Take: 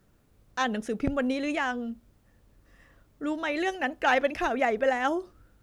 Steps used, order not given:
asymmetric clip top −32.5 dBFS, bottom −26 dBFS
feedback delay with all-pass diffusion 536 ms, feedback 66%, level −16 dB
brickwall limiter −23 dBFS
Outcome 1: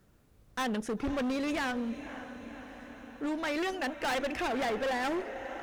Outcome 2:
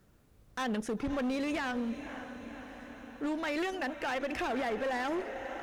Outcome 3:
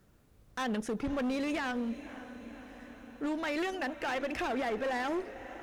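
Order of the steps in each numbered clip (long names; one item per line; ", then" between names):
feedback delay with all-pass diffusion, then asymmetric clip, then brickwall limiter
feedback delay with all-pass diffusion, then brickwall limiter, then asymmetric clip
brickwall limiter, then feedback delay with all-pass diffusion, then asymmetric clip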